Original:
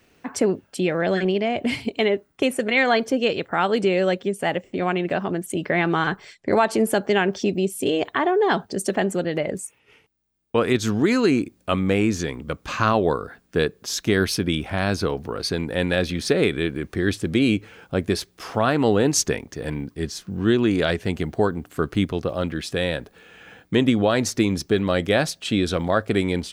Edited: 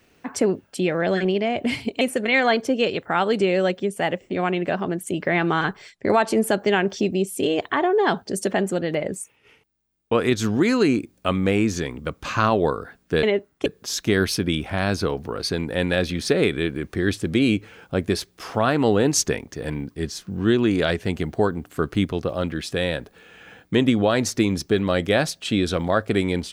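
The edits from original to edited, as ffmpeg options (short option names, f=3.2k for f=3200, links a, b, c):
-filter_complex "[0:a]asplit=4[a][b][c][d];[a]atrim=end=2.012[e];[b]atrim=start=2.438:end=13.662[f];[c]atrim=start=2.008:end=2.442[g];[d]atrim=start=13.658[h];[e][f]acrossfade=d=0.004:c1=hsin:c2=hsin[i];[i][g]acrossfade=d=0.004:c1=hsin:c2=hsin[j];[j][h]acrossfade=d=0.004:c1=hsin:c2=hsin"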